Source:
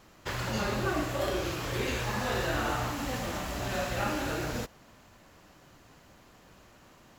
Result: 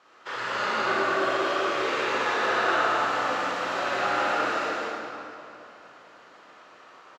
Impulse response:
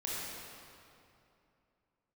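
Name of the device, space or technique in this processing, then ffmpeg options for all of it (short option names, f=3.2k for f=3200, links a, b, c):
station announcement: -filter_complex "[0:a]highpass=460,lowpass=4.5k,equalizer=f=1.3k:t=o:w=0.39:g=8,aecho=1:1:148.7|215.7:0.316|0.631[a];[1:a]atrim=start_sample=2205[b];[a][b]afir=irnorm=-1:irlink=0,volume=1.5dB"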